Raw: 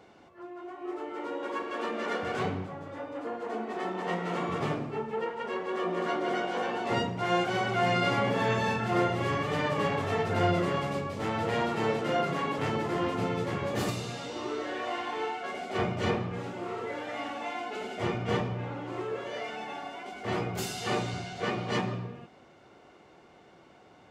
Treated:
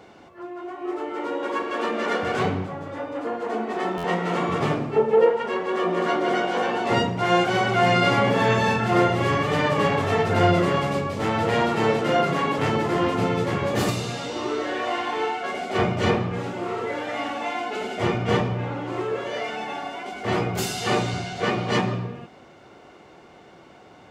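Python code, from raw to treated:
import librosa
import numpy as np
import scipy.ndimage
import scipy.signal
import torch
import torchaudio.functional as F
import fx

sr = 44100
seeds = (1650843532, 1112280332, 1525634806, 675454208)

y = fx.peak_eq(x, sr, hz=510.0, db=12.0, octaves=0.78, at=(4.96, 5.37))
y = fx.buffer_glitch(y, sr, at_s=(3.97,), block=512, repeats=5)
y = y * librosa.db_to_amplitude(7.5)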